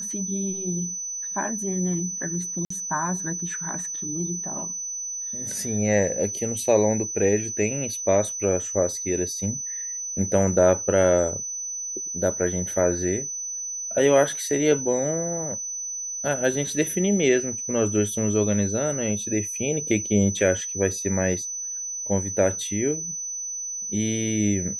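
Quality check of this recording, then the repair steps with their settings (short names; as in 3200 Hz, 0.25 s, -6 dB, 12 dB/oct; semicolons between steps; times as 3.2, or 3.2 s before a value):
tone 6000 Hz -29 dBFS
2.65–2.7 gap 54 ms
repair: notch 6000 Hz, Q 30; interpolate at 2.65, 54 ms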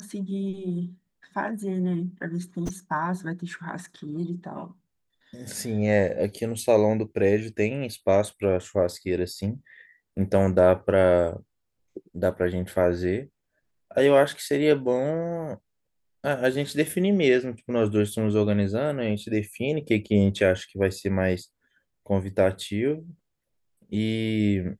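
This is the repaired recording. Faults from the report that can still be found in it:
none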